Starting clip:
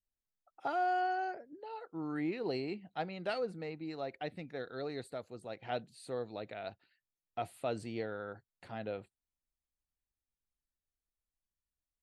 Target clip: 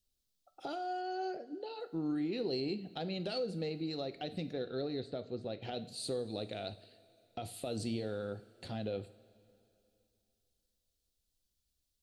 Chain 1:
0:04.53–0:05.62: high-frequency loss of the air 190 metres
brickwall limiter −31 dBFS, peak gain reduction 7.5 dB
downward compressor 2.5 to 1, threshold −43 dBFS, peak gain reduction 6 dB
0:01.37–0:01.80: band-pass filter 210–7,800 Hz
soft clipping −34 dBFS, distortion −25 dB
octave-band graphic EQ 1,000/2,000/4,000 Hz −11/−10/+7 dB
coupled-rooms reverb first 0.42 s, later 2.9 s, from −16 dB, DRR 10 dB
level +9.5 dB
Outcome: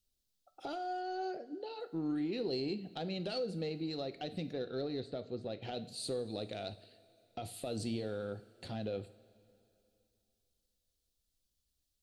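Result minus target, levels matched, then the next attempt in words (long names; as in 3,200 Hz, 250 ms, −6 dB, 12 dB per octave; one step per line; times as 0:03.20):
soft clipping: distortion +11 dB
0:04.53–0:05.62: high-frequency loss of the air 190 metres
brickwall limiter −31 dBFS, peak gain reduction 7.5 dB
downward compressor 2.5 to 1, threshold −43 dBFS, peak gain reduction 6 dB
0:01.37–0:01.80: band-pass filter 210–7,800 Hz
soft clipping −28 dBFS, distortion −36 dB
octave-band graphic EQ 1,000/2,000/4,000 Hz −11/−10/+7 dB
coupled-rooms reverb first 0.42 s, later 2.9 s, from −16 dB, DRR 10 dB
level +9.5 dB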